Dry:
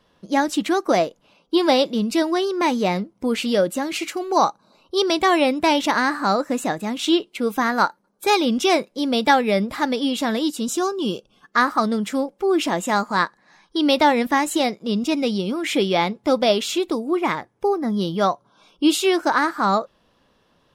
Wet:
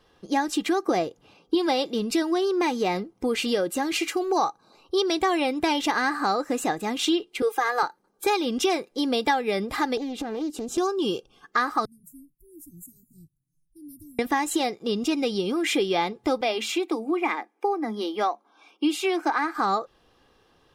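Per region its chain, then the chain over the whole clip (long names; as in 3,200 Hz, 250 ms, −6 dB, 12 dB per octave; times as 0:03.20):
0:00.82–0:01.55: high-pass filter 56 Hz + low-shelf EQ 280 Hz +9 dB
0:07.42–0:07.83: high-pass filter 380 Hz 24 dB per octave + comb filter 2.4 ms, depth 56% + one half of a high-frequency compander decoder only
0:09.97–0:10.78: tilt shelving filter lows +7 dB, about 920 Hz + downward compressor 16 to 1, threshold −26 dBFS + highs frequency-modulated by the lows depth 0.38 ms
0:11.85–0:14.19: inverse Chebyshev band-stop filter 710–3,000 Hz, stop band 80 dB + phaser with its sweep stopped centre 310 Hz, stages 8
0:16.41–0:19.55: Chebyshev high-pass with heavy ripple 210 Hz, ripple 6 dB + parametric band 2,300 Hz +10.5 dB 0.39 octaves
whole clip: comb filter 2.5 ms, depth 47%; downward compressor 3 to 1, threshold −22 dBFS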